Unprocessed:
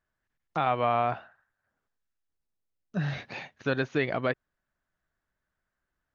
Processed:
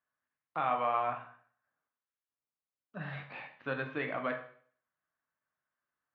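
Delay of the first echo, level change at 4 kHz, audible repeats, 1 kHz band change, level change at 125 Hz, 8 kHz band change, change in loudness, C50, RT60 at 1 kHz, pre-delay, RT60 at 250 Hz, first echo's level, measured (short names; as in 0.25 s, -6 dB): none, -10.0 dB, none, -4.0 dB, -12.0 dB, n/a, -5.5 dB, 8.5 dB, 0.50 s, 16 ms, 0.55 s, none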